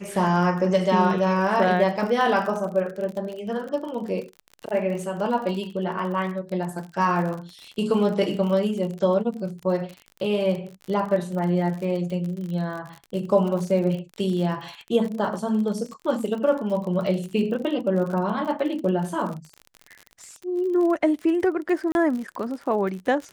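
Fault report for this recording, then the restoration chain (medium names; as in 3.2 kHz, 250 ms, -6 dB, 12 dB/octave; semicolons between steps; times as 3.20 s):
crackle 40 per s -31 dBFS
21.92–21.95 s: dropout 31 ms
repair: de-click; interpolate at 21.92 s, 31 ms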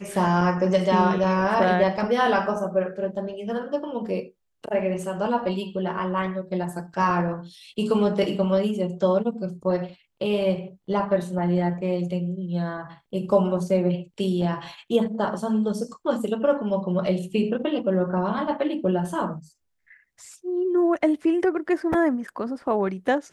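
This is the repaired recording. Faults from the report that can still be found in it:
nothing left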